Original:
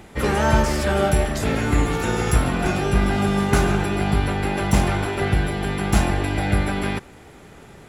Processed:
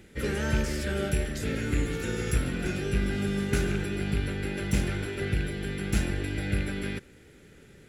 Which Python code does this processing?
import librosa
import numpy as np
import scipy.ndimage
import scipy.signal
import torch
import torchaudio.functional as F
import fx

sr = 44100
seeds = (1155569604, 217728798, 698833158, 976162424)

y = fx.rattle_buzz(x, sr, strikes_db=-14.0, level_db=-18.0)
y = fx.band_shelf(y, sr, hz=880.0, db=-13.0, octaves=1.1)
y = y * librosa.db_to_amplitude(-8.0)